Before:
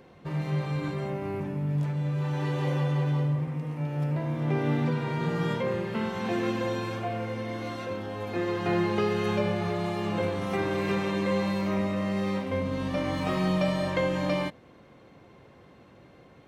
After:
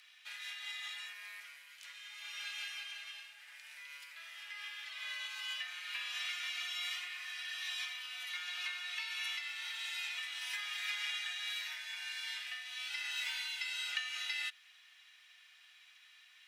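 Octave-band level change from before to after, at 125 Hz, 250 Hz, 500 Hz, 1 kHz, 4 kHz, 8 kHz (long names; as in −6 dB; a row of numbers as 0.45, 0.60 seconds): below −40 dB, below −40 dB, below −40 dB, −20.0 dB, +4.0 dB, +3.0 dB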